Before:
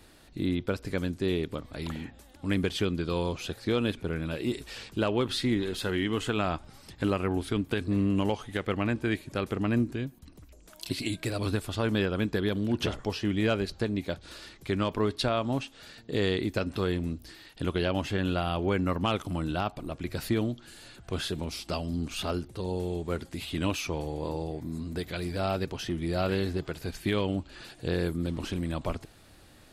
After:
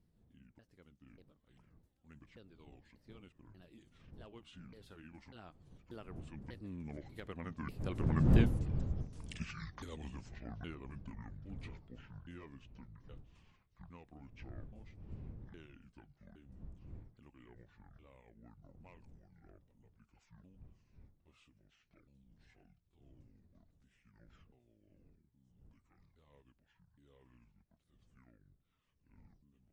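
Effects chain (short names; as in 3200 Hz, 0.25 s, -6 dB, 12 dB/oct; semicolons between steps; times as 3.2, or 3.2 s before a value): repeated pitch sweeps -11.5 st, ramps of 0.704 s; wind noise 130 Hz -31 dBFS; Doppler pass-by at 8.53, 55 m/s, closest 7.5 m; gain +4.5 dB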